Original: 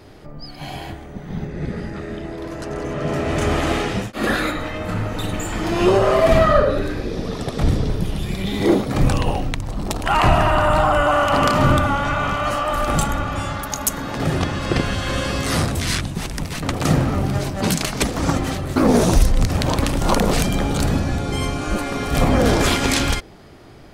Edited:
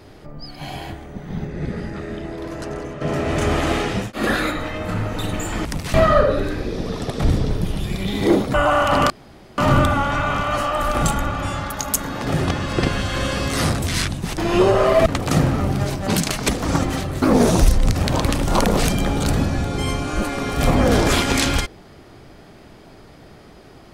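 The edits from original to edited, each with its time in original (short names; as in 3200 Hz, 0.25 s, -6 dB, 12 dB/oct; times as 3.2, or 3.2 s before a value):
2.66–3.01 fade out, to -9 dB
5.65–6.33 swap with 16.31–16.6
8.93–10.95 cut
11.51 insert room tone 0.48 s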